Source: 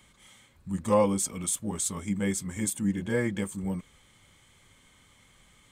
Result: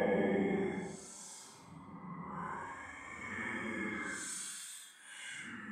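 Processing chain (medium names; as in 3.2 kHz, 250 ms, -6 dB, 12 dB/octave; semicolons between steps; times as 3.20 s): wah-wah 0.37 Hz 630–3500 Hz, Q 4.7; Paulstretch 10×, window 0.05 s, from 2.25 s; trim +13.5 dB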